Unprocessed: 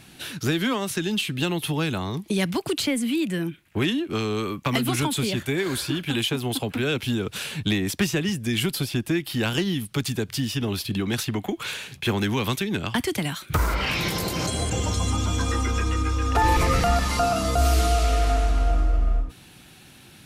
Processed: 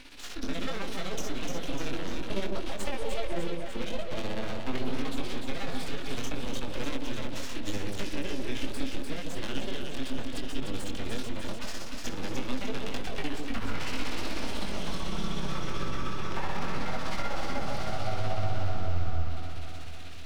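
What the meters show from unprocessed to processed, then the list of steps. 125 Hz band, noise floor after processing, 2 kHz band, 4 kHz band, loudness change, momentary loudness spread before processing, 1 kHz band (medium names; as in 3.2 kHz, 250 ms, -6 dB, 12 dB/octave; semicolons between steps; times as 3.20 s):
-11.5 dB, -31 dBFS, -9.5 dB, -10.0 dB, -11.0 dB, 6 LU, -10.0 dB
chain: Savitzky-Golay filter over 15 samples; peaking EQ 130 Hz +13.5 dB 0.31 oct; compression, threshold -22 dBFS, peak gain reduction 9 dB; tremolo 16 Hz, depth 94%; chorus 0.76 Hz, delay 19.5 ms, depth 4 ms; full-wave rectifier; harmonic-percussive split percussive -7 dB; echo whose repeats swap between lows and highs 149 ms, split 990 Hz, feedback 76%, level -3 dB; tape noise reduction on one side only encoder only; trim +3 dB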